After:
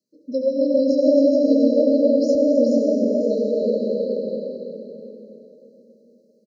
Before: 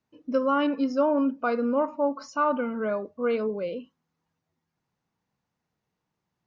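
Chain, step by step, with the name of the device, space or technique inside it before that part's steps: stadium PA (HPF 180 Hz 24 dB/oct; bell 3200 Hz +7 dB 2.5 oct; loudspeakers at several distances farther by 54 m -10 dB, 92 m -5 dB; reverb RT60 3.5 s, pre-delay 67 ms, DRR -1.5 dB); FFT band-reject 640–3900 Hz; 2.35–2.78 tilt -3 dB/oct; echo 0.428 s -4 dB

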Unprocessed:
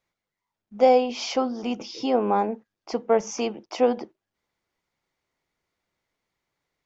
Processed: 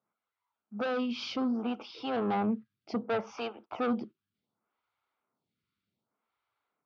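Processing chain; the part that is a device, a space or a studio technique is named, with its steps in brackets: vibe pedal into a guitar amplifier (photocell phaser 0.66 Hz; tube stage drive 26 dB, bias 0.2; speaker cabinet 100–4100 Hz, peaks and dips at 110 Hz +6 dB, 220 Hz +6 dB, 350 Hz -4 dB, 540 Hz -5 dB, 1300 Hz +7 dB, 1900 Hz -9 dB); 2.33–3.25 thirty-one-band EQ 125 Hz +10 dB, 630 Hz +5 dB, 2000 Hz +7 dB

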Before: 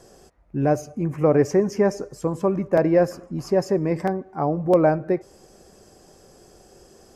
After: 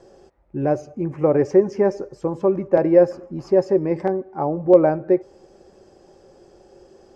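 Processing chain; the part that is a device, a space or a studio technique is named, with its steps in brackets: inside a cardboard box (LPF 4800 Hz 12 dB/oct; small resonant body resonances 370/540/830 Hz, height 9 dB, ringing for 45 ms); gain -3 dB

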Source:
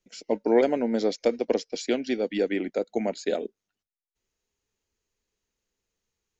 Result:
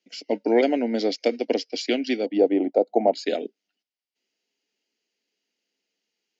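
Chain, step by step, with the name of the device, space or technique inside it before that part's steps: television speaker (speaker cabinet 200–6600 Hz, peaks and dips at 280 Hz +6 dB, 700 Hz +4 dB, 1100 Hz -9 dB, 2100 Hz +5 dB, 2900 Hz +9 dB, 4800 Hz +9 dB); 2.26–3.14 EQ curve 220 Hz 0 dB, 850 Hz +11 dB, 1600 Hz -13 dB

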